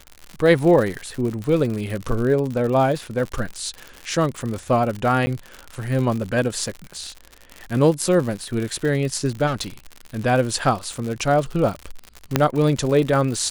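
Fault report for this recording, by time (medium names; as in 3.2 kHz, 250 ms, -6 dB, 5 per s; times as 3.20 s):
crackle 100 per s -26 dBFS
5.26–5.27 s: dropout 10 ms
9.46–9.68 s: clipped -20 dBFS
12.36 s: pop -1 dBFS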